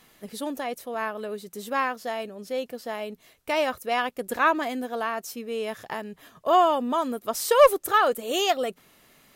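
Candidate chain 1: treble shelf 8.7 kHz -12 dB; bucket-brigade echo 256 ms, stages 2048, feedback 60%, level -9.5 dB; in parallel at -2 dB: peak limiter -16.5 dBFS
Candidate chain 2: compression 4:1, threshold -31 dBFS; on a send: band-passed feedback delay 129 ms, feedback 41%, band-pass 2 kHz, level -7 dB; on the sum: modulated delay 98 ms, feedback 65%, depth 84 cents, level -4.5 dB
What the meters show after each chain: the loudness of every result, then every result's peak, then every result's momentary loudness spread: -22.0 LUFS, -32.5 LUFS; -5.0 dBFS, -17.5 dBFS; 13 LU, 6 LU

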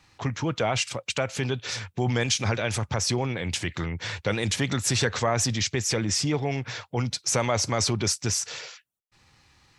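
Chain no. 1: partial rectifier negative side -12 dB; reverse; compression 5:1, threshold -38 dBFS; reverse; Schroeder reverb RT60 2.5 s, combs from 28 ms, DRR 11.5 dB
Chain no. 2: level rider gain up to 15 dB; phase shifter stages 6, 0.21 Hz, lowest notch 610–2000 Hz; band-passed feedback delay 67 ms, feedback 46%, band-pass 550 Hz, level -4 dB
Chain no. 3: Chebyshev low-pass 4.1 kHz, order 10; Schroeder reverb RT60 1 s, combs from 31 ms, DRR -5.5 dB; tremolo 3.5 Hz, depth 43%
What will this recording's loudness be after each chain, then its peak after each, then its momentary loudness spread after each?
-41.5 LUFS, -18.5 LUFS, -25.0 LUFS; -23.0 dBFS, -2.5 dBFS, -8.5 dBFS; 4 LU, 7 LU, 7 LU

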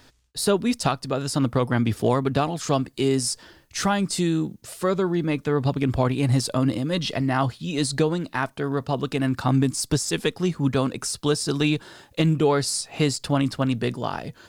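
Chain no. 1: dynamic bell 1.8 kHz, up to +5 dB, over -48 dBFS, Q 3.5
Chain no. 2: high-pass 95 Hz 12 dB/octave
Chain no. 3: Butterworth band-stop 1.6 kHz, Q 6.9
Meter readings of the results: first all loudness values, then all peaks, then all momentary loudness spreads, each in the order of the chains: -24.0 LUFS, -24.5 LUFS, -24.0 LUFS; -9.0 dBFS, -7.5 dBFS, -9.5 dBFS; 5 LU, 5 LU, 5 LU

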